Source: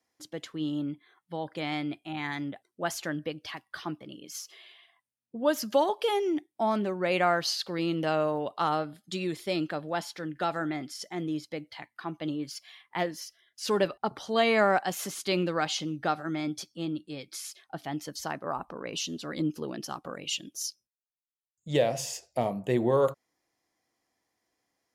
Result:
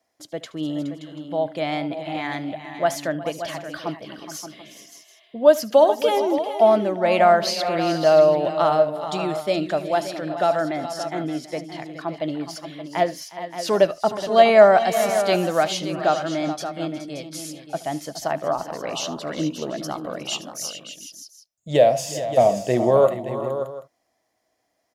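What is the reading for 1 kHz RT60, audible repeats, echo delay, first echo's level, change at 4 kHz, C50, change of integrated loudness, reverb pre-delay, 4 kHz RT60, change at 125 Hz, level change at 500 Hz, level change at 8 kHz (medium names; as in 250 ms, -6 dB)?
no reverb, 5, 74 ms, -19.5 dB, +5.0 dB, no reverb, +9.5 dB, no reverb, no reverb, +5.0 dB, +12.0 dB, +5.0 dB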